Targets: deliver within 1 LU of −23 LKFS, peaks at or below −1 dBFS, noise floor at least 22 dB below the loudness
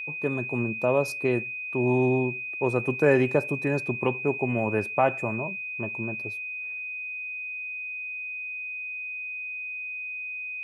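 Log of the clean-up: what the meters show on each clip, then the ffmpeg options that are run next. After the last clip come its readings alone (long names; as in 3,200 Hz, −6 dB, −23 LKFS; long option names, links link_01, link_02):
interfering tone 2,500 Hz; level of the tone −32 dBFS; integrated loudness −27.5 LKFS; sample peak −9.0 dBFS; target loudness −23.0 LKFS
→ -af "bandreject=frequency=2500:width=30"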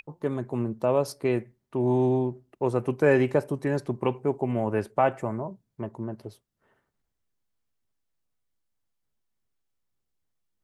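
interfering tone none found; integrated loudness −27.0 LKFS; sample peak −9.0 dBFS; target loudness −23.0 LKFS
→ -af "volume=4dB"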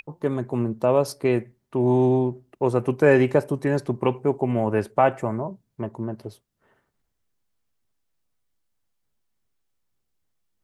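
integrated loudness −23.0 LKFS; sample peak −5.0 dBFS; background noise floor −75 dBFS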